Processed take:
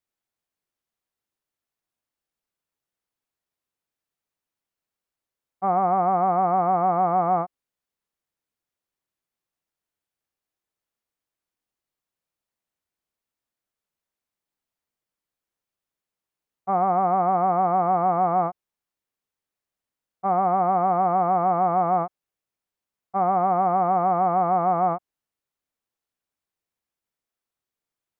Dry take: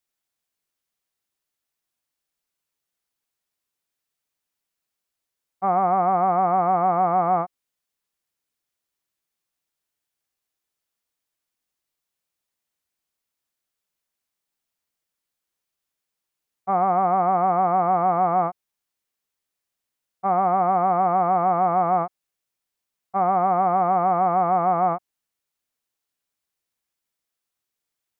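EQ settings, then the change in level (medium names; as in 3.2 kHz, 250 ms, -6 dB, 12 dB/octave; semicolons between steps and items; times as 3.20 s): treble shelf 2 kHz -8 dB; 0.0 dB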